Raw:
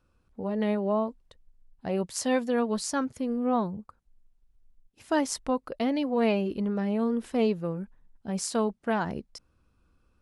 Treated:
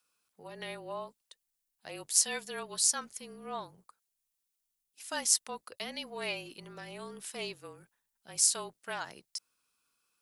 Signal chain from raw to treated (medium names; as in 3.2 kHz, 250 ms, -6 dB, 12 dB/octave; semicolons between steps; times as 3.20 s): octave divider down 2 oct, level -5 dB; frequency shift -31 Hz; differentiator; trim +8.5 dB